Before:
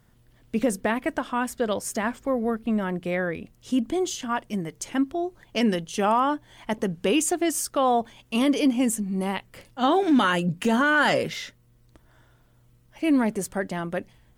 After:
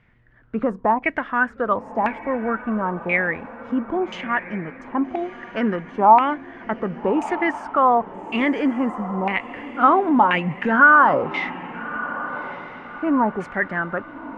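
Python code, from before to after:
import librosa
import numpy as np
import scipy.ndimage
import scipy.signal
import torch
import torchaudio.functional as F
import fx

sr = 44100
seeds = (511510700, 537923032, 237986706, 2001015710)

y = fx.filter_lfo_lowpass(x, sr, shape='saw_down', hz=0.97, low_hz=830.0, high_hz=2400.0, q=6.2)
y = fx.echo_diffused(y, sr, ms=1250, feedback_pct=41, wet_db=-14)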